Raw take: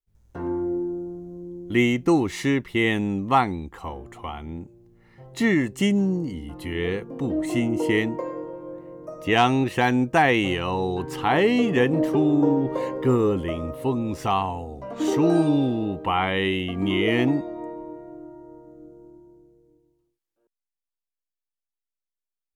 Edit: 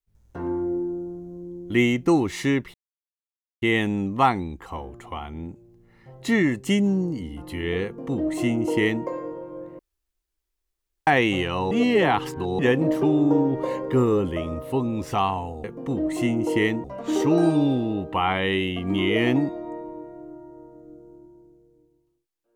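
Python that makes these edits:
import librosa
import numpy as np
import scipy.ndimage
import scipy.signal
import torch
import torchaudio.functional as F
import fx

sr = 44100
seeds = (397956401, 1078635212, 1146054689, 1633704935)

y = fx.edit(x, sr, fx.insert_silence(at_s=2.74, length_s=0.88),
    fx.duplicate(start_s=6.97, length_s=1.2, to_s=14.76),
    fx.room_tone_fill(start_s=8.91, length_s=1.28),
    fx.reverse_span(start_s=10.83, length_s=0.88), tone=tone)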